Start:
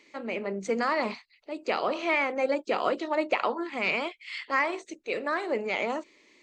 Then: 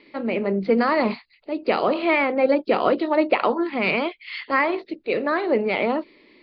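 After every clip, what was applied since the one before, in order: steep low-pass 4.9 kHz 96 dB/octave; bass shelf 460 Hz +9.5 dB; trim +4 dB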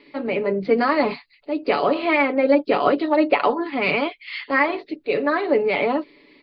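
comb 7 ms, depth 63%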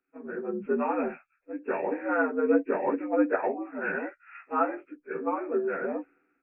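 frequency axis rescaled in octaves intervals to 80%; three bands expanded up and down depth 70%; trim -7 dB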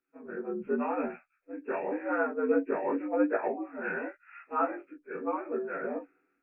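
chorus 0.89 Hz, delay 16.5 ms, depth 6.2 ms

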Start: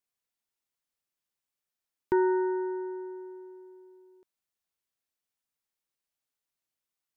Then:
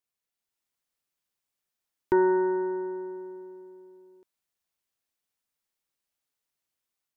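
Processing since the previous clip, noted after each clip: level rider gain up to 4 dB; AM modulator 190 Hz, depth 15%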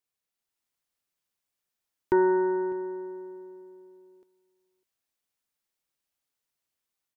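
delay 602 ms -22 dB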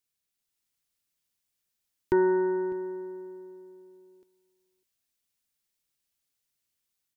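peaking EQ 790 Hz -8.5 dB 2.7 oct; trim +4.5 dB

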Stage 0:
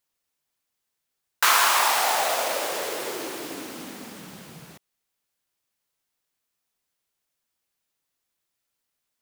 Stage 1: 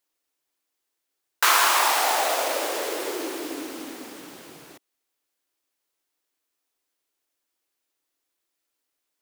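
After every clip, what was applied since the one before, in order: resonant low shelf 240 Hz -6.5 dB, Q 3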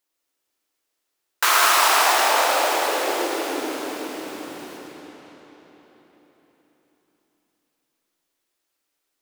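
reverberation RT60 4.5 s, pre-delay 45 ms, DRR -2.5 dB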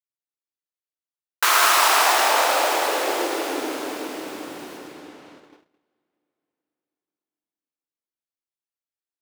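gate -47 dBFS, range -23 dB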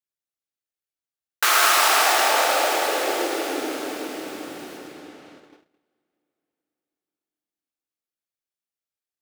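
band-stop 1 kHz, Q 7.2

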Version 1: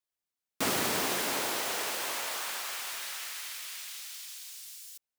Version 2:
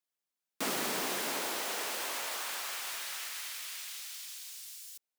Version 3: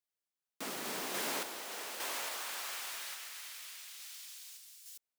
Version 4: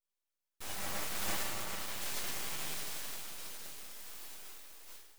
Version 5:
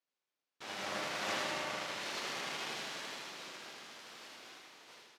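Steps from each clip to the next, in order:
high-pass 160 Hz 24 dB/octave; in parallel at +0.5 dB: peak limiter -28.5 dBFS, peak gain reduction 10.5 dB; on the sum: trim -7 dB
random-step tremolo; trim -1.5 dB
inharmonic resonator 98 Hz, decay 0.45 s, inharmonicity 0.002; FDN reverb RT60 3.5 s, high-frequency decay 0.35×, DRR -5.5 dB; full-wave rectifier; trim +10 dB
median filter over 5 samples; band-pass 210–7700 Hz; feedback delay 79 ms, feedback 51%, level -3.5 dB; trim +2 dB

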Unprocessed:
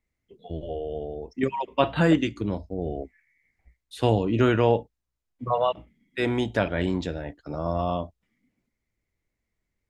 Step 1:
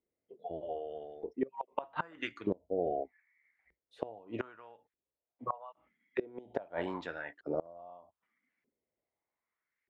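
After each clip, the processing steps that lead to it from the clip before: LFO band-pass saw up 0.81 Hz 390–1900 Hz; inverted gate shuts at -24 dBFS, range -25 dB; trim +4.5 dB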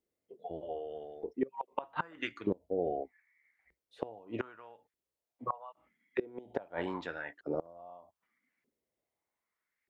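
dynamic bell 640 Hz, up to -6 dB, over -50 dBFS, Q 5.6; trim +1 dB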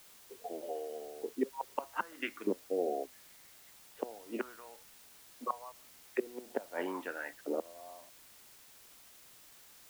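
Chebyshev band-pass 220–3000 Hz, order 4; in parallel at -7 dB: word length cut 8-bit, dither triangular; on the sum: trim -3 dB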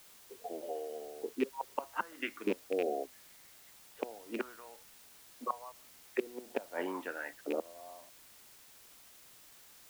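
rattle on loud lows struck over -40 dBFS, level -29 dBFS

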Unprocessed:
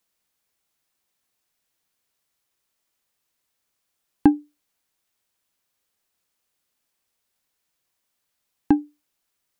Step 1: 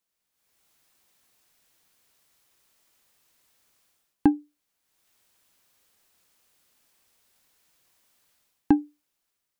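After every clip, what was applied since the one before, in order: level rider gain up to 16.5 dB; trim -7 dB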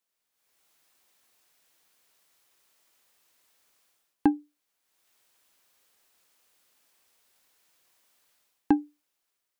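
tone controls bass -8 dB, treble -1 dB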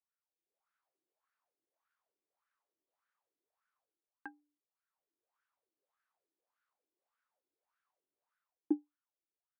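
wah-wah 1.7 Hz 320–1500 Hz, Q 6; trim -3.5 dB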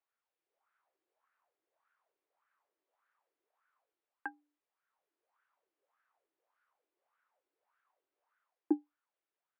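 band-pass 420–2300 Hz; trim +8 dB

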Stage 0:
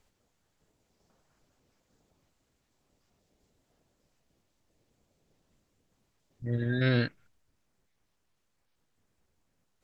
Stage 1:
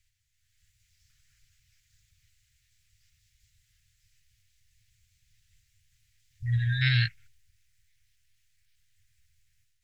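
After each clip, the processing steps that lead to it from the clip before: elliptic band-stop 110–1900 Hz, stop band 40 dB; level rider gain up to 9 dB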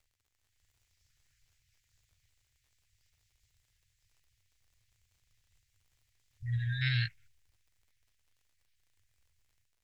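crackle 69 per s -54 dBFS; trim -6.5 dB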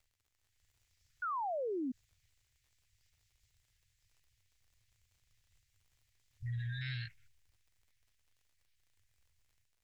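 painted sound fall, 1.22–1.92 s, 240–1500 Hz -29 dBFS; peak limiter -32.5 dBFS, peak gain reduction 11 dB; trim -1 dB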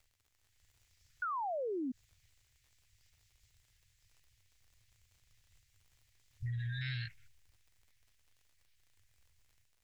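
compression, threshold -40 dBFS, peak gain reduction 4.5 dB; trim +4.5 dB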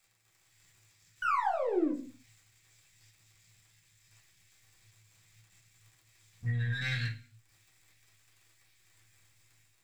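partial rectifier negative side -7 dB; reverberation RT60 0.40 s, pre-delay 3 ms, DRR -6.5 dB; trim +5.5 dB

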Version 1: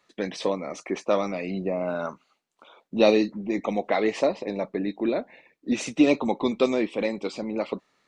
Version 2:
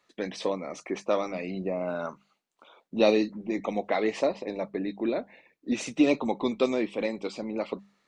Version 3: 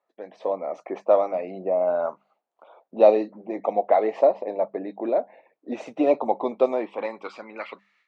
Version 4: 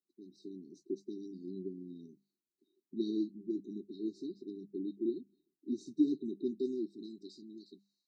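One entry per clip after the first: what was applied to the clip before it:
hum notches 50/100/150/200 Hz; trim -3 dB
band-pass sweep 680 Hz -> 2.2 kHz, 6.63–7.92 s; level rider gain up to 11 dB
brick-wall FIR band-stop 400–3700 Hz; trim -4 dB

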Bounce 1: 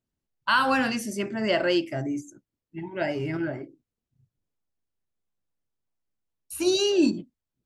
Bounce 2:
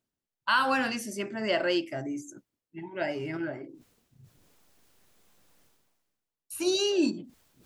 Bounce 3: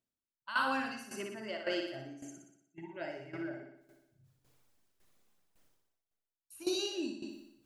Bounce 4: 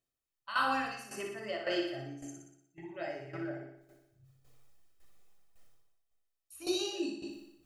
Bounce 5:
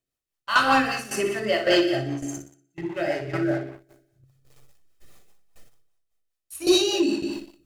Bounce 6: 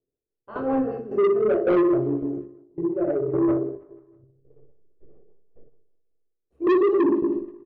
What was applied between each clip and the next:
bass shelf 150 Hz -10.5 dB; reverse; upward compressor, threshold -37 dBFS; reverse; trim -2.5 dB
reverb removal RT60 0.9 s; flutter echo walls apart 10.3 m, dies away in 1 s; tremolo saw down 1.8 Hz, depth 75%; trim -7 dB
reverberation RT60 0.25 s, pre-delay 3 ms, DRR 5.5 dB
waveshaping leveller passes 2; rotary cabinet horn 5 Hz; trim +9 dB
resonant low-pass 430 Hz, resonance Q 4.9; saturation -15.5 dBFS, distortion -8 dB; feedback delay 160 ms, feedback 56%, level -24 dB

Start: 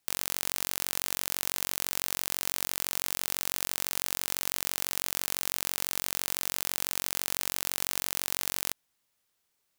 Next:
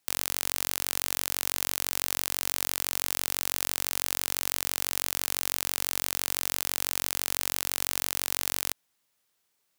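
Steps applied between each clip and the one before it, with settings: bass shelf 71 Hz -8.5 dB; trim +2 dB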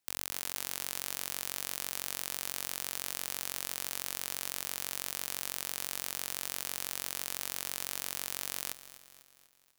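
bit-crushed delay 247 ms, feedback 55%, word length 7-bit, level -15 dB; trim -7.5 dB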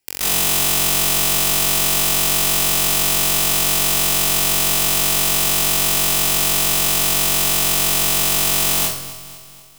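reverberation RT60 0.65 s, pre-delay 125 ms, DRR -11.5 dB; trim +6 dB

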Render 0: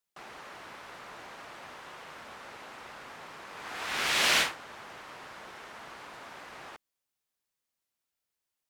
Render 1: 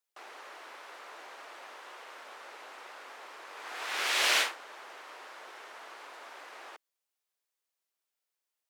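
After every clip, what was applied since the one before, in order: high-pass 350 Hz 24 dB/octave; trim -1.5 dB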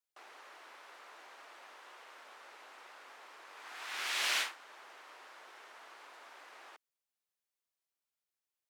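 dynamic bell 480 Hz, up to -7 dB, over -54 dBFS, Q 1.2; trim -6 dB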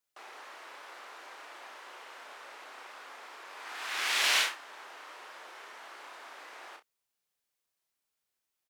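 early reflections 33 ms -5 dB, 62 ms -15.5 dB; trim +5 dB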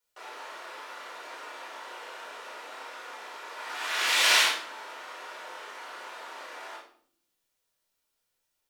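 reverberation RT60 0.60 s, pre-delay 4 ms, DRR -2 dB

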